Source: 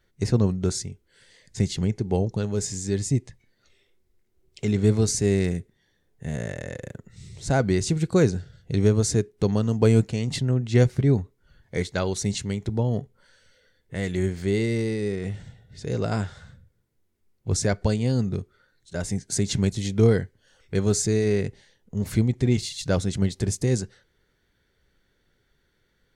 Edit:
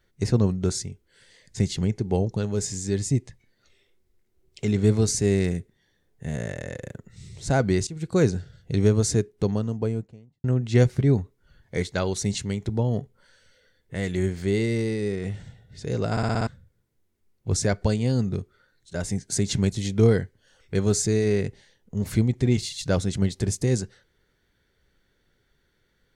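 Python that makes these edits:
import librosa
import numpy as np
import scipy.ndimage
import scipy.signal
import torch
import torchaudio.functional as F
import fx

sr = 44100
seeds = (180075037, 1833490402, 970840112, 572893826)

y = fx.studio_fade_out(x, sr, start_s=9.13, length_s=1.31)
y = fx.edit(y, sr, fx.fade_in_from(start_s=7.87, length_s=0.39, floor_db=-19.5),
    fx.stutter_over(start_s=16.11, slice_s=0.06, count=6), tone=tone)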